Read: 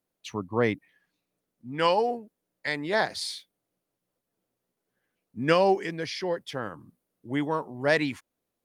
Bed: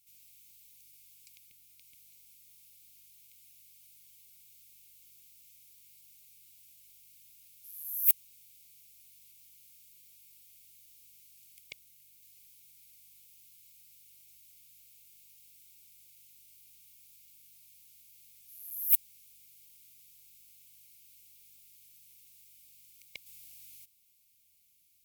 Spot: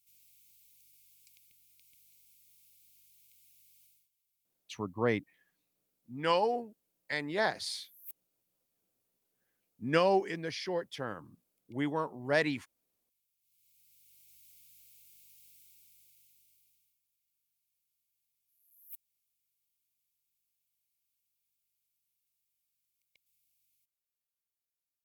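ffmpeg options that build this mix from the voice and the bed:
-filter_complex "[0:a]adelay=4450,volume=-5dB[a];[1:a]volume=18dB,afade=t=out:st=3.82:d=0.27:silence=0.112202,afade=t=in:st=13.4:d=1.06:silence=0.0707946,afade=t=out:st=15.48:d=1.52:silence=0.0668344[b];[a][b]amix=inputs=2:normalize=0"

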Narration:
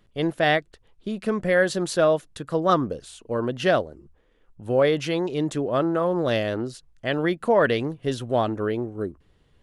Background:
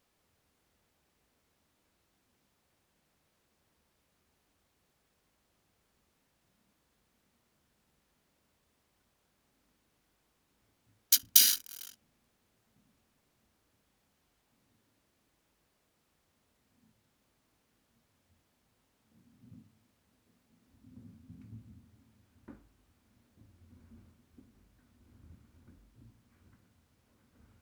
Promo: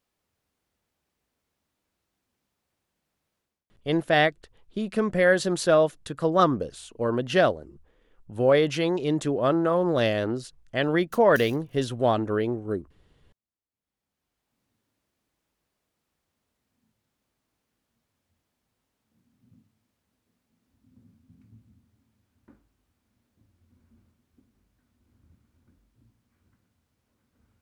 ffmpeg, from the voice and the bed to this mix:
-filter_complex "[0:a]adelay=3700,volume=0dB[a];[1:a]volume=15.5dB,afade=t=out:st=3.36:d=0.3:silence=0.1,afade=t=in:st=13.7:d=0.91:silence=0.0944061[b];[a][b]amix=inputs=2:normalize=0"

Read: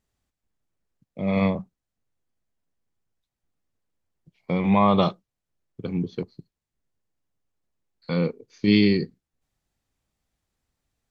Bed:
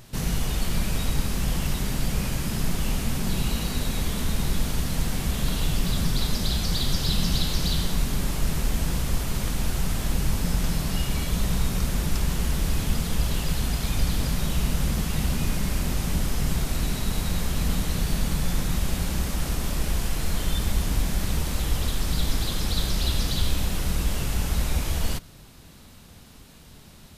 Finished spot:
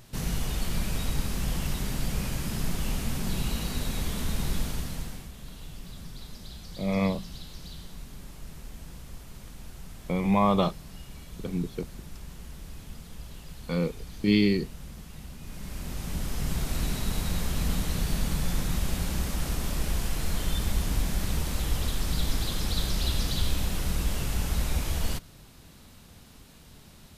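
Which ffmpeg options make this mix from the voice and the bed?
-filter_complex "[0:a]adelay=5600,volume=-4dB[a];[1:a]volume=11dB,afade=t=out:st=4.57:d=0.73:silence=0.199526,afade=t=in:st=15.41:d=1.39:silence=0.177828[b];[a][b]amix=inputs=2:normalize=0"

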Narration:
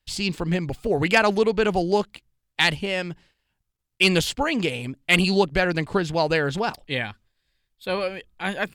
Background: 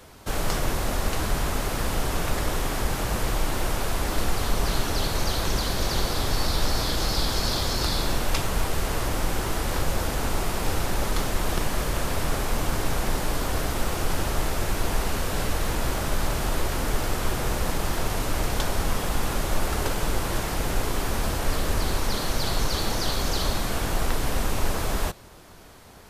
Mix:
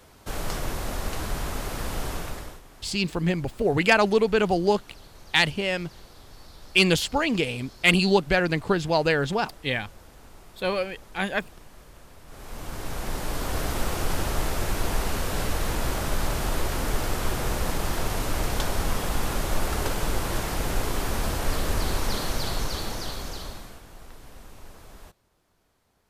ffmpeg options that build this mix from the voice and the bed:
-filter_complex "[0:a]adelay=2750,volume=-0.5dB[a];[1:a]volume=17.5dB,afade=t=out:st=2.09:d=0.52:silence=0.11885,afade=t=in:st=12.26:d=1.45:silence=0.0794328,afade=t=out:st=22.13:d=1.69:silence=0.1[b];[a][b]amix=inputs=2:normalize=0"

